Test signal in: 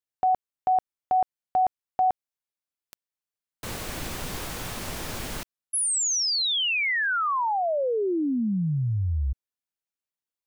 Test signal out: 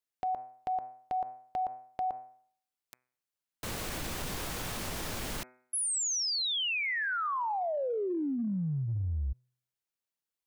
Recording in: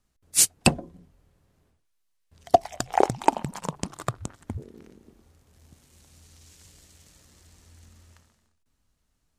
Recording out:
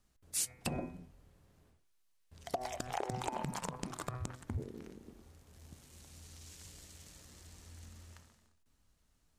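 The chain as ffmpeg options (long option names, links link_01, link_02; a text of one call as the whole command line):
ffmpeg -i in.wav -af "bandreject=frequency=125.8:width_type=h:width=4,bandreject=frequency=251.6:width_type=h:width=4,bandreject=frequency=377.4:width_type=h:width=4,bandreject=frequency=503.2:width_type=h:width=4,bandreject=frequency=629:width_type=h:width=4,bandreject=frequency=754.8:width_type=h:width=4,bandreject=frequency=880.6:width_type=h:width=4,bandreject=frequency=1006.4:width_type=h:width=4,bandreject=frequency=1132.2:width_type=h:width=4,bandreject=frequency=1258:width_type=h:width=4,bandreject=frequency=1383.8:width_type=h:width=4,bandreject=frequency=1509.6:width_type=h:width=4,bandreject=frequency=1635.4:width_type=h:width=4,bandreject=frequency=1761.2:width_type=h:width=4,bandreject=frequency=1887:width_type=h:width=4,bandreject=frequency=2012.8:width_type=h:width=4,bandreject=frequency=2138.6:width_type=h:width=4,bandreject=frequency=2264.4:width_type=h:width=4,bandreject=frequency=2390.2:width_type=h:width=4,bandreject=frequency=2516:width_type=h:width=4,acompressor=threshold=-30dB:ratio=6:attack=0.85:release=49:knee=6:detection=rms" out.wav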